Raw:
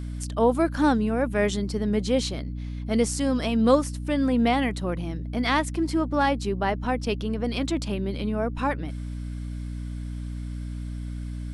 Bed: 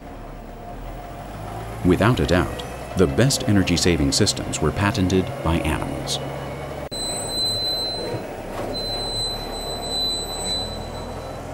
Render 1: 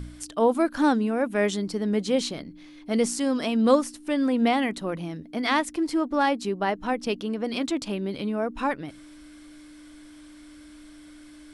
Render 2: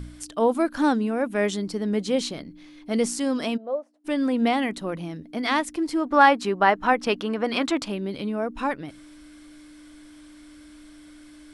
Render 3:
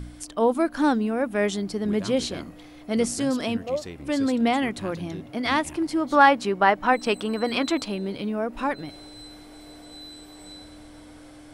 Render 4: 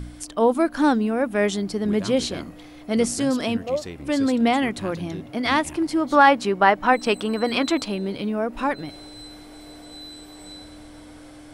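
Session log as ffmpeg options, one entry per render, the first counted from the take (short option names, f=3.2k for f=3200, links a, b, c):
-af "bandreject=f=60:t=h:w=4,bandreject=f=120:t=h:w=4,bandreject=f=180:t=h:w=4,bandreject=f=240:t=h:w=4"
-filter_complex "[0:a]asplit=3[a][b][c];[a]afade=t=out:st=3.56:d=0.02[d];[b]bandpass=f=630:t=q:w=6.8,afade=t=in:st=3.56:d=0.02,afade=t=out:st=4.04:d=0.02[e];[c]afade=t=in:st=4.04:d=0.02[f];[d][e][f]amix=inputs=3:normalize=0,asettb=1/sr,asplit=3[g][h][i];[g]atrim=end=6.064[j];[h]atrim=start=6.06:end=7.86,asetpts=PTS-STARTPTS,afade=t=in:d=0.004:c=qsin,afade=t=out:st=1.796:d=0.004:c=qsin,equalizer=f=1.3k:w=0.54:g=10.5[k];[i]atrim=start=7.856[l];[j][k]acrossfade=d=0.004:c1=hsin:c2=qsin[m];[m][l]acrossfade=d=0.004:c1=qsin:c2=hsin"
-filter_complex "[1:a]volume=-20.5dB[a];[0:a][a]amix=inputs=2:normalize=0"
-af "volume=2.5dB,alimiter=limit=-3dB:level=0:latency=1"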